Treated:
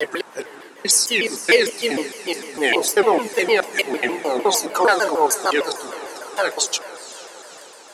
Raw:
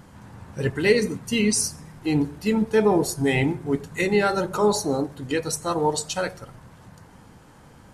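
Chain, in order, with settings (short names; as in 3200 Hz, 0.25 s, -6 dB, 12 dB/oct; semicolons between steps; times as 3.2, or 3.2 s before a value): slices in reverse order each 0.212 s, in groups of 4; expander -44 dBFS; Bessel high-pass 540 Hz, order 4; diffused feedback echo 0.452 s, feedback 60%, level -15 dB; shaped vibrato saw down 6.6 Hz, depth 250 cents; gain +8 dB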